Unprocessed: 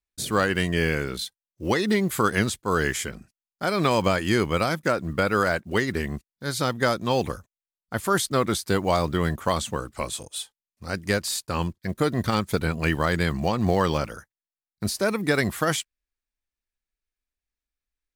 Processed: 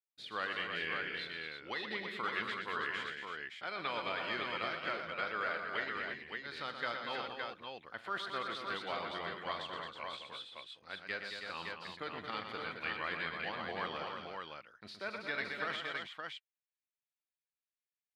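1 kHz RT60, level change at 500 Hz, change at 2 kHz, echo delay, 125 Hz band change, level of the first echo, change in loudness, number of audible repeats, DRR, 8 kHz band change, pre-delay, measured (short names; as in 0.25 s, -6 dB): none, -18.5 dB, -9.0 dB, 42 ms, -28.5 dB, -16.0 dB, -14.5 dB, 6, none, -32.0 dB, none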